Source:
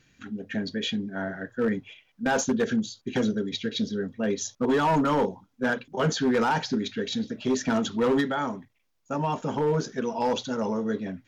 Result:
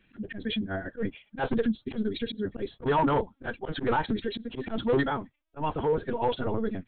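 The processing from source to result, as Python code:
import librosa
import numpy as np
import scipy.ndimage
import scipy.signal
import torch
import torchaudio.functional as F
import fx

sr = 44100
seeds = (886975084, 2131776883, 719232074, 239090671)

y = fx.lpc_vocoder(x, sr, seeds[0], excitation='pitch_kept', order=16)
y = fx.stretch_vocoder(y, sr, factor=0.61)
y = fx.auto_swell(y, sr, attack_ms=100.0)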